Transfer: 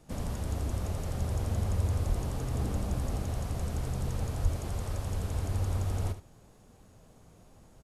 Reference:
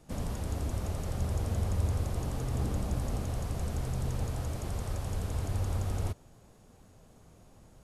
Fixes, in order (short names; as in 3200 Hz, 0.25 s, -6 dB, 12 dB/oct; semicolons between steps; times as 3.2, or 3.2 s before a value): 2.08–2.2 HPF 140 Hz 24 dB/oct; 4.42–4.54 HPF 140 Hz 24 dB/oct; inverse comb 74 ms -11.5 dB